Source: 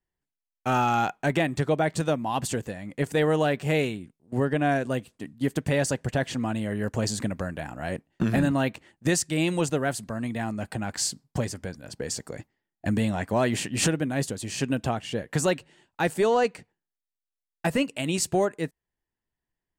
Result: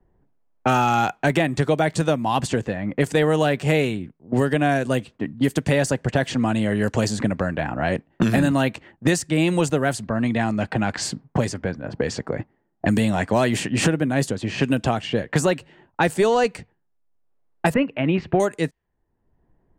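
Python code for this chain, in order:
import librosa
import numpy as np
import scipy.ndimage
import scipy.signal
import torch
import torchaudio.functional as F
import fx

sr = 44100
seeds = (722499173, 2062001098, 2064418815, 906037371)

y = fx.env_lowpass(x, sr, base_hz=730.0, full_db=-22.5)
y = fx.cheby2_lowpass(y, sr, hz=11000.0, order=4, stop_db=80, at=(17.74, 18.4))
y = fx.band_squash(y, sr, depth_pct=70)
y = y * librosa.db_to_amplitude(5.0)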